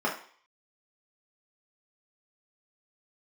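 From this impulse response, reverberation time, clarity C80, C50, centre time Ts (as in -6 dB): 0.50 s, 12.5 dB, 7.5 dB, 25 ms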